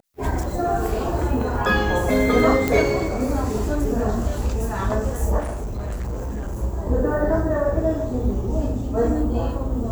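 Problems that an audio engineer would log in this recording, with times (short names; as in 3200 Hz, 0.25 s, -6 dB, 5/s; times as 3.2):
2.68 pop
5.39–6.63 clipped -24 dBFS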